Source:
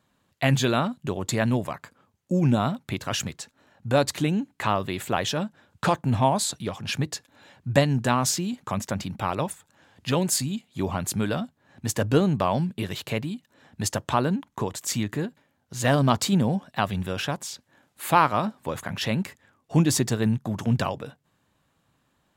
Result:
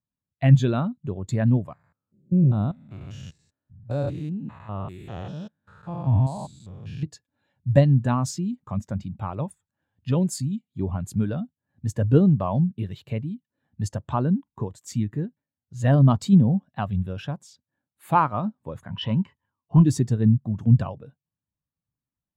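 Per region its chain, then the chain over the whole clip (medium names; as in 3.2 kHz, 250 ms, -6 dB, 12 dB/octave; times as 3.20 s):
1.73–7.03 s: spectrogram pixelated in time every 200 ms + peaking EQ 240 Hz -3.5 dB 0.26 oct
18.89–19.85 s: overload inside the chain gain 16 dB + distance through air 74 m + small resonant body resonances 980/3000 Hz, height 13 dB, ringing for 20 ms
whole clip: bass shelf 140 Hz +9 dB; spectral contrast expander 1.5:1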